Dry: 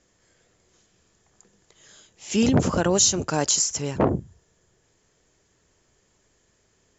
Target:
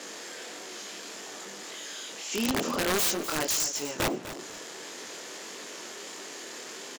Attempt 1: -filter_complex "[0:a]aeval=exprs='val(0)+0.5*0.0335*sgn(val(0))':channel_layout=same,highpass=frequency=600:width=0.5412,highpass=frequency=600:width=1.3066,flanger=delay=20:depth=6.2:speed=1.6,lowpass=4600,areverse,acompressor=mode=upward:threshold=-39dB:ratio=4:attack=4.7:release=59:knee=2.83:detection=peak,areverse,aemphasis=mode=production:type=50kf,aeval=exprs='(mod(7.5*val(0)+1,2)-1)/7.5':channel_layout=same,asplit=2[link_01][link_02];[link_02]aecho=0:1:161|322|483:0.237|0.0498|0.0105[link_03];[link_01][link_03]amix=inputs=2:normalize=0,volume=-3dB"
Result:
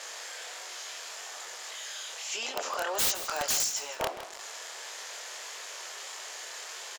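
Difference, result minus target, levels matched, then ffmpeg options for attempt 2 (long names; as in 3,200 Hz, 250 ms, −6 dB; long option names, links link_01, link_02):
250 Hz band −16.5 dB; echo 89 ms early
-filter_complex "[0:a]aeval=exprs='val(0)+0.5*0.0335*sgn(val(0))':channel_layout=same,highpass=frequency=250:width=0.5412,highpass=frequency=250:width=1.3066,flanger=delay=20:depth=6.2:speed=1.6,lowpass=4600,areverse,acompressor=mode=upward:threshold=-39dB:ratio=4:attack=4.7:release=59:knee=2.83:detection=peak,areverse,aemphasis=mode=production:type=50kf,aeval=exprs='(mod(7.5*val(0)+1,2)-1)/7.5':channel_layout=same,asplit=2[link_01][link_02];[link_02]aecho=0:1:250|500|750:0.237|0.0498|0.0105[link_03];[link_01][link_03]amix=inputs=2:normalize=0,volume=-3dB"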